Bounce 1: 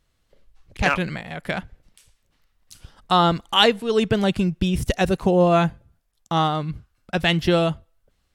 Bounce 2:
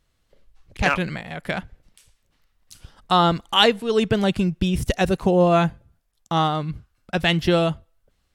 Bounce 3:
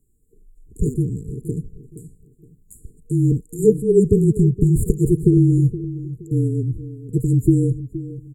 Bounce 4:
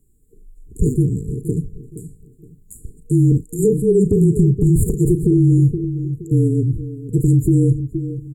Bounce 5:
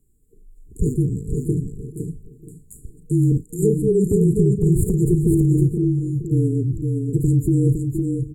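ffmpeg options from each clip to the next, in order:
ffmpeg -i in.wav -af anull out.wav
ffmpeg -i in.wav -filter_complex "[0:a]afreqshift=-30,afftfilt=real='re*(1-between(b*sr/4096,470,6800))':imag='im*(1-between(b*sr/4096,470,6800))':win_size=4096:overlap=0.75,asplit=2[link_01][link_02];[link_02]adelay=470,lowpass=frequency=1700:poles=1,volume=-14dB,asplit=2[link_03][link_04];[link_04]adelay=470,lowpass=frequency=1700:poles=1,volume=0.33,asplit=2[link_05][link_06];[link_06]adelay=470,lowpass=frequency=1700:poles=1,volume=0.33[link_07];[link_01][link_03][link_05][link_07]amix=inputs=4:normalize=0,volume=6dB" out.wav
ffmpeg -i in.wav -filter_complex "[0:a]asplit=2[link_01][link_02];[link_02]adelay=36,volume=-13dB[link_03];[link_01][link_03]amix=inputs=2:normalize=0,alimiter=level_in=10.5dB:limit=-1dB:release=50:level=0:latency=1,volume=-5.5dB" out.wav
ffmpeg -i in.wav -af "aecho=1:1:510:0.562,volume=-3.5dB" out.wav

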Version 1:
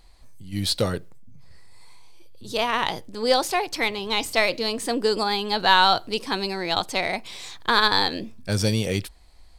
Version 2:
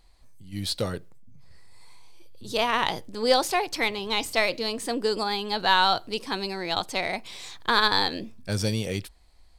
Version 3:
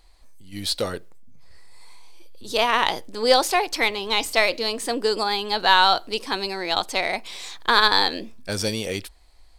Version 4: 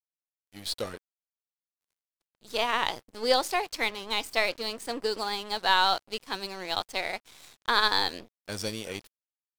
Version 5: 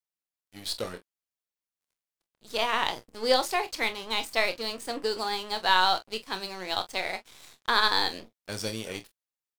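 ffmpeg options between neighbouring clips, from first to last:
ffmpeg -i in.wav -af "dynaudnorm=framelen=250:gausssize=13:maxgain=11.5dB,volume=-5.5dB" out.wav
ffmpeg -i in.wav -af "equalizer=frequency=130:width_type=o:width=1.3:gain=-12,volume=4.5dB" out.wav
ffmpeg -i in.wav -af "aeval=exprs='sgn(val(0))*max(abs(val(0))-0.0188,0)':channel_layout=same,volume=-6dB" out.wav
ffmpeg -i in.wav -af "aecho=1:1:27|44:0.282|0.168" out.wav

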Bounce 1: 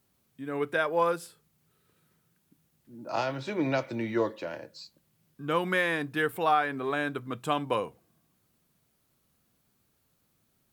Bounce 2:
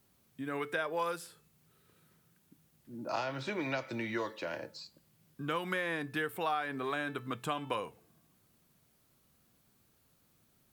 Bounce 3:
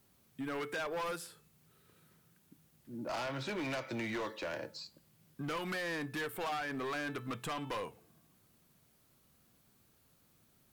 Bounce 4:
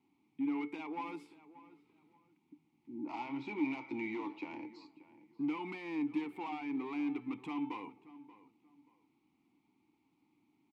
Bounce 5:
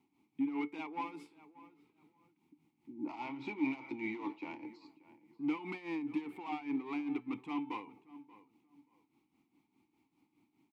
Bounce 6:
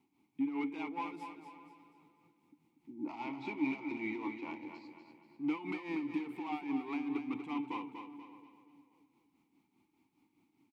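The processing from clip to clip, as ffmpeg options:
ffmpeg -i in.wav -filter_complex "[0:a]acrossover=split=1000|2700[link_01][link_02][link_03];[link_01]acompressor=threshold=-39dB:ratio=4[link_04];[link_02]acompressor=threshold=-40dB:ratio=4[link_05];[link_03]acompressor=threshold=-49dB:ratio=4[link_06];[link_04][link_05][link_06]amix=inputs=3:normalize=0,bandreject=frequency=437.1:width_type=h:width=4,bandreject=frequency=874.2:width_type=h:width=4,bandreject=frequency=1311.3:width_type=h:width=4,bandreject=frequency=1748.4:width_type=h:width=4,bandreject=frequency=2185.5:width_type=h:width=4,bandreject=frequency=2622.6:width_type=h:width=4,bandreject=frequency=3059.7:width_type=h:width=4,bandreject=frequency=3496.8:width_type=h:width=4,bandreject=frequency=3933.9:width_type=h:width=4,bandreject=frequency=4371:width_type=h:width=4,bandreject=frequency=4808.1:width_type=h:width=4,bandreject=frequency=5245.2:width_type=h:width=4,bandreject=frequency=5682.3:width_type=h:width=4,bandreject=frequency=6119.4:width_type=h:width=4,bandreject=frequency=6556.5:width_type=h:width=4,bandreject=frequency=6993.6:width_type=h:width=4,bandreject=frequency=7430.7:width_type=h:width=4,bandreject=frequency=7867.8:width_type=h:width=4,bandreject=frequency=8304.9:width_type=h:width=4,bandreject=frequency=8742:width_type=h:width=4,bandreject=frequency=9179.1:width_type=h:width=4,bandreject=frequency=9616.2:width_type=h:width=4,bandreject=frequency=10053.3:width_type=h:width=4,bandreject=frequency=10490.4:width_type=h:width=4,bandreject=frequency=10927.5:width_type=h:width=4,bandreject=frequency=11364.6:width_type=h:width=4,bandreject=frequency=11801.7:width_type=h:width=4,bandreject=frequency=12238.8:width_type=h:width=4,bandreject=frequency=12675.9:width_type=h:width=4,bandreject=frequency=13113:width_type=h:width=4,bandreject=frequency=13550.1:width_type=h:width=4,bandreject=frequency=13987.2:width_type=h:width=4,volume=2dB" out.wav
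ffmpeg -i in.wav -af "asoftclip=type=hard:threshold=-35.5dB,volume=1dB" out.wav
ffmpeg -i in.wav -filter_complex "[0:a]asplit=3[link_01][link_02][link_03];[link_01]bandpass=frequency=300:width_type=q:width=8,volume=0dB[link_04];[link_02]bandpass=frequency=870:width_type=q:width=8,volume=-6dB[link_05];[link_03]bandpass=frequency=2240:width_type=q:width=8,volume=-9dB[link_06];[link_04][link_05][link_06]amix=inputs=3:normalize=0,asplit=2[link_07][link_08];[link_08]adelay=582,lowpass=frequency=2400:poles=1,volume=-17dB,asplit=2[link_09][link_10];[link_10]adelay=582,lowpass=frequency=2400:poles=1,volume=0.26[link_11];[link_07][link_09][link_11]amix=inputs=3:normalize=0,volume=10dB" out.wav
ffmpeg -i in.wav -af "tremolo=f=4.9:d=0.69,volume=3dB" out.wav
ffmpeg -i in.wav -af "aecho=1:1:241|482|723|964|1205:0.422|0.173|0.0709|0.0291|0.0119" out.wav

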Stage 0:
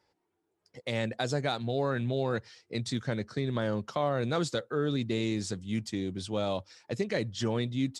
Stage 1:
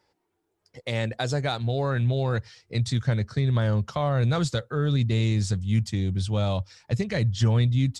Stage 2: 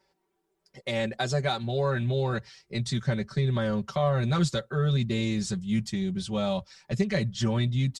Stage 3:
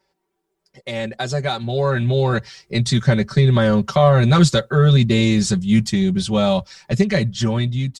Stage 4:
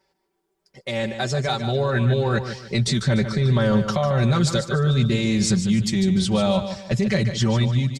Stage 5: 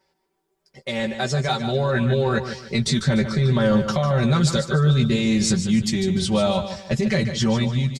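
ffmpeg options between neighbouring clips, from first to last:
ffmpeg -i in.wav -af "asubboost=boost=10:cutoff=100,volume=3.5dB" out.wav
ffmpeg -i in.wav -af "aecho=1:1:5.2:0.89,volume=-3dB" out.wav
ffmpeg -i in.wav -af "dynaudnorm=framelen=770:gausssize=5:maxgain=11.5dB,volume=1.5dB" out.wav
ffmpeg -i in.wav -af "alimiter=limit=-13dB:level=0:latency=1:release=16,aecho=1:1:148|296|444|592:0.335|0.107|0.0343|0.011" out.wav
ffmpeg -i in.wav -filter_complex "[0:a]asplit=2[link_01][link_02];[link_02]adelay=13,volume=-7dB[link_03];[link_01][link_03]amix=inputs=2:normalize=0" out.wav

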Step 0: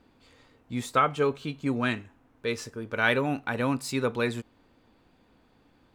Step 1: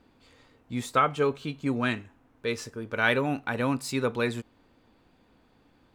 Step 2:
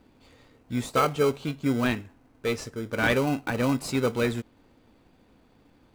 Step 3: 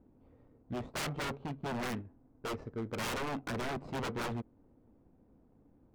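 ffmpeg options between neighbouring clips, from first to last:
ffmpeg -i in.wav -af anull out.wav
ffmpeg -i in.wav -filter_complex "[0:a]asplit=2[link_01][link_02];[link_02]acrusher=samples=25:mix=1:aa=0.000001,volume=-5.5dB[link_03];[link_01][link_03]amix=inputs=2:normalize=0,asoftclip=type=tanh:threshold=-11dB" out.wav
ffmpeg -i in.wav -af "adynamicsmooth=sensitivity=2:basefreq=710,aeval=exprs='0.0422*(abs(mod(val(0)/0.0422+3,4)-2)-1)':channel_layout=same,volume=-3.5dB" out.wav

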